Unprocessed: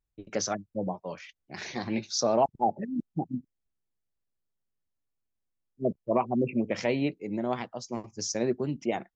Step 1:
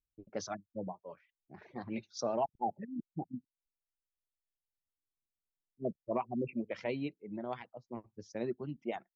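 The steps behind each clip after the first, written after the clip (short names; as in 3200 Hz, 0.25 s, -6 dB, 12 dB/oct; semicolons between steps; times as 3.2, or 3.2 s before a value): reverb removal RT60 1.2 s; low-pass opened by the level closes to 550 Hz, open at -22.5 dBFS; gain -8 dB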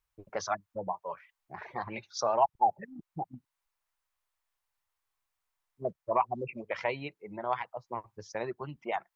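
in parallel at +2 dB: compressor, threshold -43 dBFS, peak gain reduction 14.5 dB; on the sum: ten-band EQ 250 Hz -12 dB, 1000 Hz +11 dB, 2000 Hz +4 dB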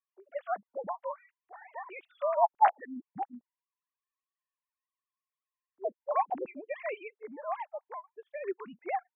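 sine-wave speech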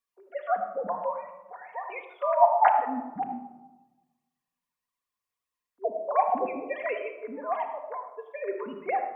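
reverb RT60 1.1 s, pre-delay 4 ms, DRR 2 dB; gain +3.5 dB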